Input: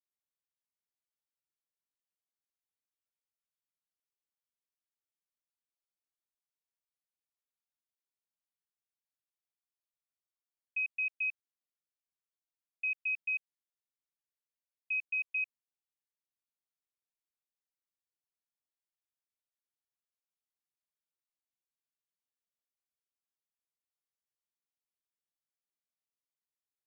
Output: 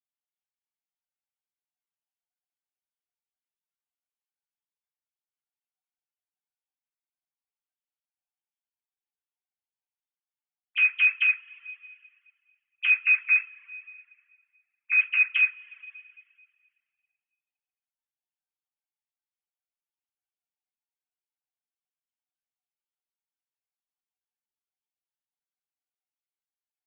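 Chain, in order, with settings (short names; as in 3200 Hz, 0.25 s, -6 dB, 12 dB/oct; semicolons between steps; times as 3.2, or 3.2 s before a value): sine-wave speech; two-slope reverb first 0.32 s, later 2.1 s, from -18 dB, DRR -8 dB; reverb removal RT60 0.63 s; gain +2.5 dB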